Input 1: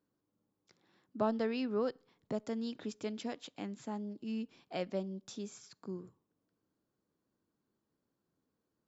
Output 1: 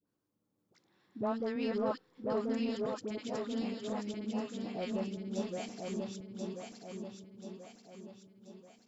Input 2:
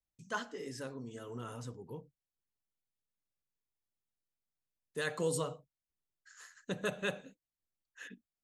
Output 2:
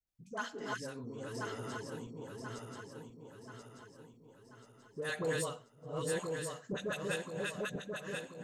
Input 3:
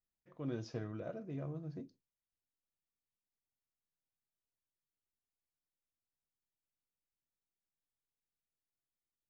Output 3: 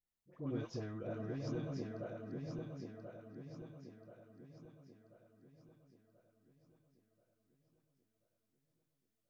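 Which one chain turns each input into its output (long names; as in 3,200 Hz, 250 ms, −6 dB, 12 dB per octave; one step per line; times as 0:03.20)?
feedback delay that plays each chunk backwards 517 ms, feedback 68%, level −1 dB
all-pass dispersion highs, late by 73 ms, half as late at 860 Hz
in parallel at −8.5 dB: soft clipping −34 dBFS
on the sum: level −3.5 dB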